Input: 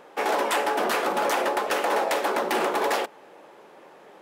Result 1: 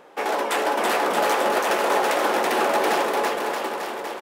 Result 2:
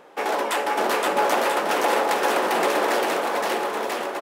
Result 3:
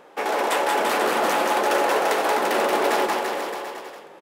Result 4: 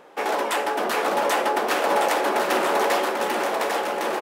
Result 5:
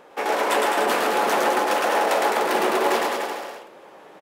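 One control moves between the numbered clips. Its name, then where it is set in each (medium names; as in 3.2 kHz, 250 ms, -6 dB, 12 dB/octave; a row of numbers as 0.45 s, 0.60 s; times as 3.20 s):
bouncing-ball echo, first gap: 330 ms, 520 ms, 180 ms, 790 ms, 110 ms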